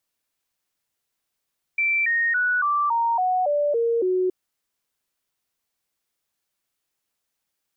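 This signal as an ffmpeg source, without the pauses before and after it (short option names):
-f lavfi -i "aevalsrc='0.119*clip(min(mod(t,0.28),0.28-mod(t,0.28))/0.005,0,1)*sin(2*PI*2340*pow(2,-floor(t/0.28)/3)*mod(t,0.28))':d=2.52:s=44100"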